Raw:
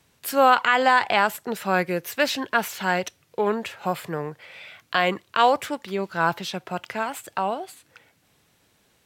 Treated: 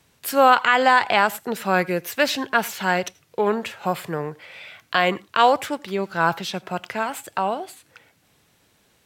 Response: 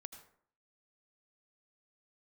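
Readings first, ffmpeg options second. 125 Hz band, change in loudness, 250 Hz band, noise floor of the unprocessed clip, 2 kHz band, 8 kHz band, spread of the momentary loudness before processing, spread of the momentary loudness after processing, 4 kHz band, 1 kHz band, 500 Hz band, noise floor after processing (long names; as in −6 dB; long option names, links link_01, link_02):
+2.0 dB, +2.0 dB, +2.0 dB, −64 dBFS, +2.0 dB, +2.0 dB, 14 LU, 14 LU, +2.0 dB, +2.0 dB, +2.0 dB, −62 dBFS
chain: -filter_complex "[0:a]asplit=2[link_01][link_02];[1:a]atrim=start_sample=2205,afade=type=out:start_time=0.16:duration=0.01,atrim=end_sample=7497[link_03];[link_02][link_03]afir=irnorm=-1:irlink=0,volume=-5.5dB[link_04];[link_01][link_04]amix=inputs=2:normalize=0"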